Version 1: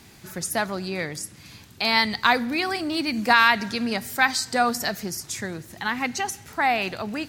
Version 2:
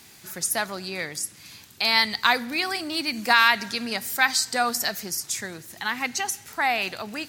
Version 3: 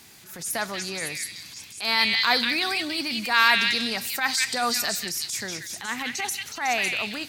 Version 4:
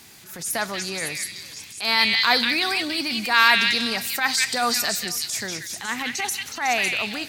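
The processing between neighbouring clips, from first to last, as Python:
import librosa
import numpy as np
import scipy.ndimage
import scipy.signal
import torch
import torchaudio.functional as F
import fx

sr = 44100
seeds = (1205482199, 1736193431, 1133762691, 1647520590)

y1 = fx.tilt_eq(x, sr, slope=2.0)
y1 = F.gain(torch.from_numpy(y1), -2.0).numpy()
y2 = fx.echo_stepped(y1, sr, ms=184, hz=2800.0, octaves=0.7, feedback_pct=70, wet_db=0)
y2 = fx.transient(y2, sr, attack_db=-11, sustain_db=1)
y3 = y2 + 10.0 ** (-22.5 / 20.0) * np.pad(y2, (int(473 * sr / 1000.0), 0))[:len(y2)]
y3 = F.gain(torch.from_numpy(y3), 2.5).numpy()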